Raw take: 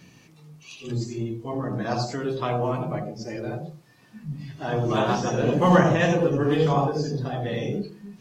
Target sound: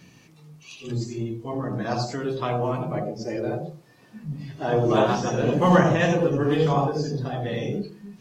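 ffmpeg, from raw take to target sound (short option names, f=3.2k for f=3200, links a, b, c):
-filter_complex "[0:a]asettb=1/sr,asplit=3[a][b][c];[a]atrim=end=2.964[d];[b]atrim=start=2.96:end=5.07,asetpts=PTS-STARTPTS,afade=t=in:d=0.004:c=qsin,afade=t=out:st=2.106:d=0.004:c=qsin,equalizer=f=470:t=o:w=1.5:g=6[e];[c]atrim=start=5.066[f];[d][e]acrossfade=d=0.004:c1=hsin:c2=qsin[g];[g][f]acrossfade=d=0.004:c1=qsin:c2=hsin"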